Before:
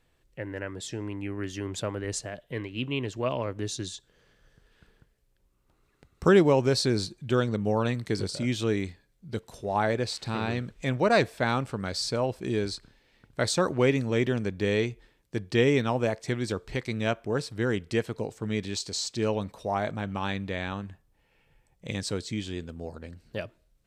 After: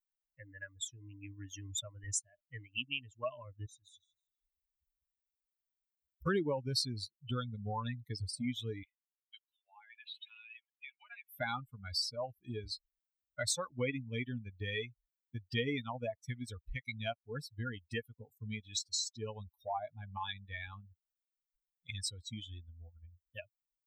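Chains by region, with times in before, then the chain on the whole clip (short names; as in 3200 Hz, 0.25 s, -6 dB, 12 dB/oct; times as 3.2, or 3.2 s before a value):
3.66–6.27 compressor 3:1, threshold -45 dBFS + warbling echo 0.158 s, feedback 61%, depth 107 cents, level -6.5 dB
8.83–11.29 HPF 1300 Hz + resonant high shelf 4100 Hz -11.5 dB, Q 3 + compressor, threshold -37 dBFS
whole clip: per-bin expansion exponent 3; high shelf 2200 Hz +10.5 dB; compressor 2.5:1, threshold -50 dBFS; gain +9 dB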